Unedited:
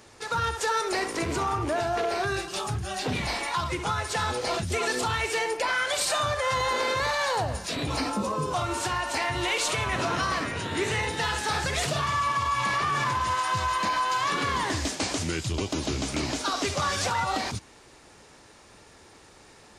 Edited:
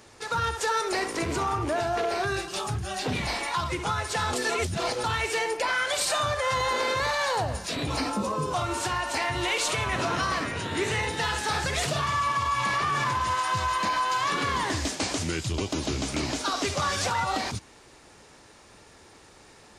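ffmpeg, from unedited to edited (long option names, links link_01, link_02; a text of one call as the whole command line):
ffmpeg -i in.wav -filter_complex "[0:a]asplit=3[link_01][link_02][link_03];[link_01]atrim=end=4.332[link_04];[link_02]atrim=start=4.328:end=5.042,asetpts=PTS-STARTPTS,areverse[link_05];[link_03]atrim=start=5.038[link_06];[link_04][link_05]acrossfade=duration=0.004:curve1=hsin:curve2=hsin[link_07];[link_07][link_06]acrossfade=duration=0.004:curve1=hsin:curve2=hsin" out.wav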